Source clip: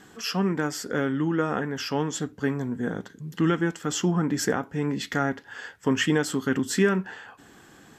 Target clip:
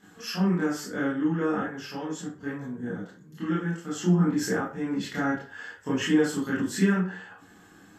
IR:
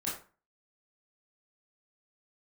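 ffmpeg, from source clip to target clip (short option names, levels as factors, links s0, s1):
-filter_complex "[0:a]asettb=1/sr,asplit=3[s0][s1][s2];[s0]atrim=end=1.644[s3];[s1]atrim=start=1.64:end=4,asetpts=PTS-STARTPTS,afade=t=in:d=0.004:c=qsin,afade=t=out:st=2.356:d=0.004:c=qsin,flanger=delay=4.7:depth=5.1:regen=-45:speed=1.9:shape=sinusoidal[s4];[s2]atrim=start=3.996[s5];[s3][s4]acrossfade=d=0.004:c1=hsin:c2=qsin[s6];[s6][s5]acrossfade=d=0.004:c1=qsin:c2=hsin[s7];[1:a]atrim=start_sample=2205[s8];[s7][s8]afir=irnorm=-1:irlink=0,volume=0.501"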